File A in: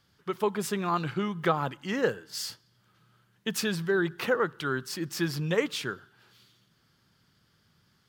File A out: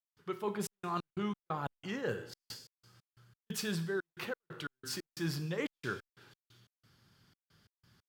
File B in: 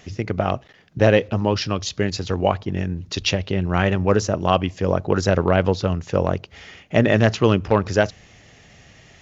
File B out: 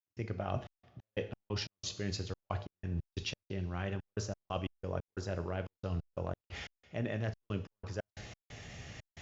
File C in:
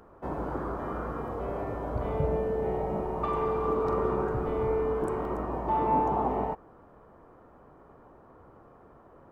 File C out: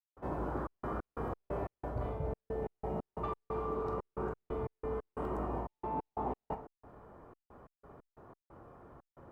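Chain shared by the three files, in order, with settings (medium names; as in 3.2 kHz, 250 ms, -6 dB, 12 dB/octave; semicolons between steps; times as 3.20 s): peaking EQ 100 Hz +4.5 dB 1 oct; reverse; compression 12:1, threshold -31 dBFS; reverse; feedback comb 120 Hz, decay 0.93 s, harmonics all, mix 50%; two-slope reverb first 0.56 s, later 2 s, from -16 dB, DRR 9 dB; trance gate ".xxx.x.x.x" 90 bpm -60 dB; trim +4 dB; Opus 256 kbps 48 kHz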